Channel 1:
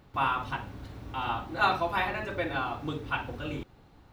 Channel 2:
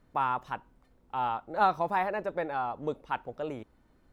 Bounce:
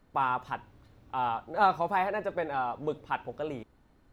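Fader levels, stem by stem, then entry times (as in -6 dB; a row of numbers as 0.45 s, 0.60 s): -15.0 dB, +0.5 dB; 0.00 s, 0.00 s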